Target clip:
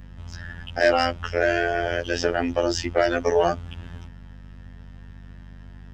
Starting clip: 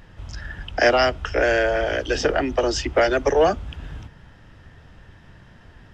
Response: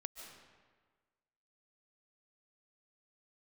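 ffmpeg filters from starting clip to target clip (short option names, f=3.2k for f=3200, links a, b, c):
-filter_complex "[0:a]asplit=2[a][b];[b]aeval=exprs='sgn(val(0))*max(abs(val(0))-0.0211,0)':c=same,volume=-11dB[c];[a][c]amix=inputs=2:normalize=0,afftfilt=real='hypot(re,im)*cos(PI*b)':imag='0':win_size=2048:overlap=0.75,aeval=exprs='val(0)+0.00891*(sin(2*PI*50*n/s)+sin(2*PI*2*50*n/s)/2+sin(2*PI*3*50*n/s)/3+sin(2*PI*4*50*n/s)/4+sin(2*PI*5*50*n/s)/5)':c=same,asoftclip=type=tanh:threshold=-4dB"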